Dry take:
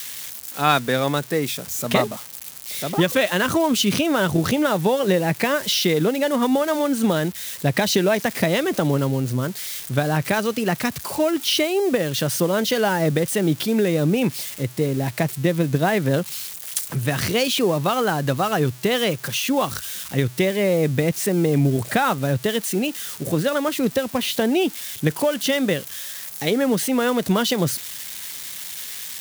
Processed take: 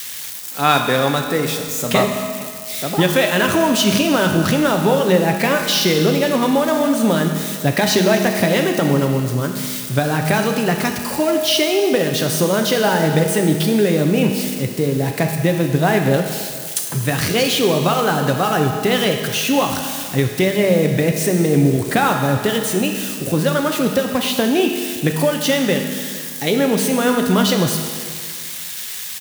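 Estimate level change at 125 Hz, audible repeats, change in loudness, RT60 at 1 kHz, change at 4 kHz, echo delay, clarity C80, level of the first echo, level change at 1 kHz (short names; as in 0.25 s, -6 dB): +4.0 dB, 1, +4.0 dB, 1.9 s, +4.0 dB, 0.457 s, 6.0 dB, -22.5 dB, +4.5 dB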